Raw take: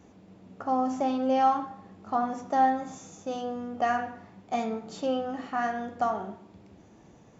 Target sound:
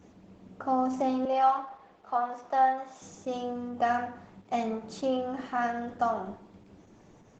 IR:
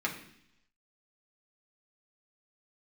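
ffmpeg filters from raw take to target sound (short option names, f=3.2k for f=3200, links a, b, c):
-filter_complex "[0:a]asettb=1/sr,asplit=3[a][b][c];[a]atrim=end=1.254[d];[b]atrim=start=1.25:end=3.02,asetpts=PTS-STARTPTS,afade=t=in:d=0.004:c=qsin,afade=t=out:st=1.766:d=0.004:c=qsin,acrossover=split=400 5700:gain=0.112 1 0.178[e][f][g];[e][f][g]amix=inputs=3:normalize=0[h];[c]atrim=start=3.016[i];[d][h]acrossfade=d=0.004:c1=hsin:c2=qsin[j];[j][i]acrossfade=d=0.004:c1=qsin:c2=hsin,aresample=32000,aresample=44100" -ar 48000 -c:a libopus -b:a 12k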